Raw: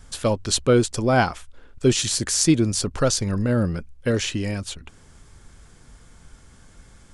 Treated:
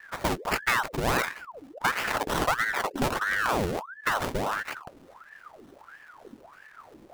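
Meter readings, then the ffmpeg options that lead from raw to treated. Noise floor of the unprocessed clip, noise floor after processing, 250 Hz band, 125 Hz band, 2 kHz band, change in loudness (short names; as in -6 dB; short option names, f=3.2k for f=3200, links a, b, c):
-51 dBFS, -54 dBFS, -12.5 dB, -13.5 dB, +4.0 dB, -6.0 dB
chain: -af "acrusher=samples=26:mix=1:aa=0.000001:lfo=1:lforange=15.6:lforate=3.3,acompressor=threshold=-20dB:ratio=4,aeval=exprs='val(0)*sin(2*PI*1000*n/s+1000*0.75/1.5*sin(2*PI*1.5*n/s))':c=same"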